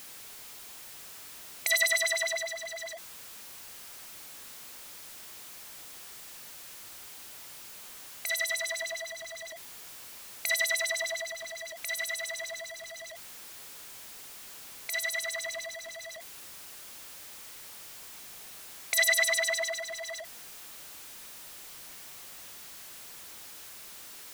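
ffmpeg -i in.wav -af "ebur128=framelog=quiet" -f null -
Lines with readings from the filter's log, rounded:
Integrated loudness:
  I:         -34.0 LUFS
  Threshold: -44.0 LUFS
Loudness range:
  LRA:        13.9 LU
  Threshold: -53.9 LUFS
  LRA low:   -43.6 LUFS
  LRA high:  -29.7 LUFS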